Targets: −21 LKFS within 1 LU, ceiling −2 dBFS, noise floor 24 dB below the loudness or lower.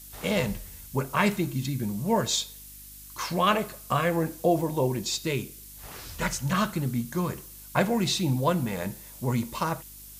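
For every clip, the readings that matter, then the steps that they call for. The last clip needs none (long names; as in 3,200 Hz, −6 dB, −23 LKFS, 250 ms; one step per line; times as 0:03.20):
mains hum 50 Hz; hum harmonics up to 300 Hz; level of the hum −50 dBFS; background noise floor −46 dBFS; target noise floor −52 dBFS; integrated loudness −28.0 LKFS; sample peak −8.5 dBFS; target loudness −21.0 LKFS
→ hum removal 50 Hz, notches 6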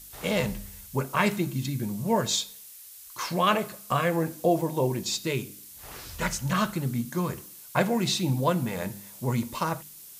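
mains hum none found; background noise floor −47 dBFS; target noise floor −52 dBFS
→ noise reduction from a noise print 6 dB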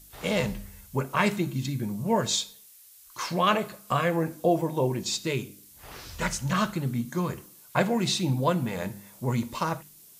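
background noise floor −53 dBFS; integrated loudness −28.0 LKFS; sample peak −8.0 dBFS; target loudness −21.0 LKFS
→ level +7 dB
brickwall limiter −2 dBFS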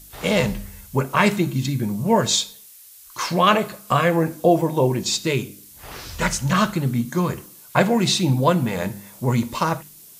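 integrated loudness −21.0 LKFS; sample peak −2.0 dBFS; background noise floor −46 dBFS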